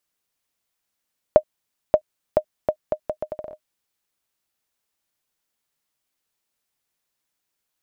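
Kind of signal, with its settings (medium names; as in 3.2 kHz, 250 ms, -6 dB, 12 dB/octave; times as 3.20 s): bouncing ball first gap 0.58 s, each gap 0.74, 615 Hz, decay 74 ms -1 dBFS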